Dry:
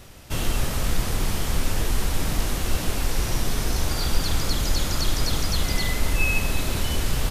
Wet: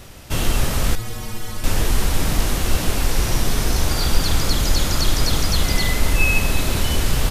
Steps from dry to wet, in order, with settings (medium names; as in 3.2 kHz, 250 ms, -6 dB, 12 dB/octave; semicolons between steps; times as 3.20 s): 0.95–1.64 s: inharmonic resonator 110 Hz, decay 0.22 s, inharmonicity 0.008; trim +5 dB